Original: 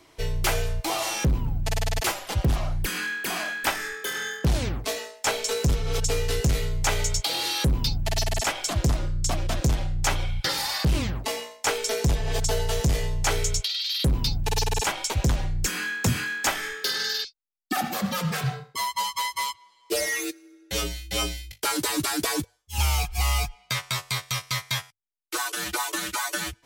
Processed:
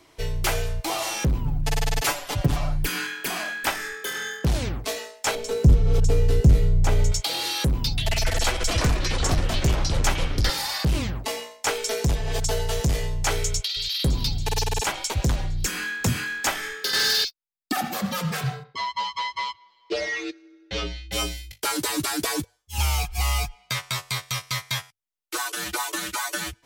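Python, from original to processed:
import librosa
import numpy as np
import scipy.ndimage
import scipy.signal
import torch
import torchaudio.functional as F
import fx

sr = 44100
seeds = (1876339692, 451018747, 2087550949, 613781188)

y = fx.comb(x, sr, ms=6.9, depth=0.77, at=(1.45, 3.28))
y = fx.tilt_shelf(y, sr, db=8.5, hz=630.0, at=(5.35, 7.12))
y = fx.echo_pitch(y, sr, ms=134, semitones=-5, count=3, db_per_echo=-3.0, at=(7.84, 10.5))
y = fx.echo_throw(y, sr, start_s=13.48, length_s=0.47, ms=280, feedback_pct=75, wet_db=-13.0)
y = fx.leveller(y, sr, passes=3, at=(16.93, 17.72))
y = fx.lowpass(y, sr, hz=4700.0, slope=24, at=(18.63, 21.11), fade=0.02)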